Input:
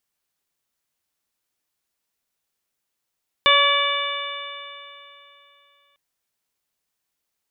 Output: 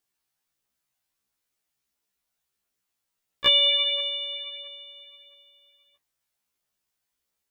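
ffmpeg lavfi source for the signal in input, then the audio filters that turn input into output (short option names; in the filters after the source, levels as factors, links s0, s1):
-f lavfi -i "aevalsrc='0.0891*pow(10,-3*t/3)*sin(2*PI*565.73*t)+0.158*pow(10,-3*t/3)*sin(2*PI*1135.86*t)+0.0794*pow(10,-3*t/3)*sin(2*PI*1714.72*t)+0.126*pow(10,-3*t/3)*sin(2*PI*2306.53*t)+0.106*pow(10,-3*t/3)*sin(2*PI*2915.37*t)+0.15*pow(10,-3*t/3)*sin(2*PI*3545.1*t)':d=2.5:s=44100"
-af "aphaser=in_gain=1:out_gain=1:delay=1.5:decay=0.27:speed=1.5:type=triangular,afftfilt=real='re*1.73*eq(mod(b,3),0)':imag='im*1.73*eq(mod(b,3),0)':win_size=2048:overlap=0.75"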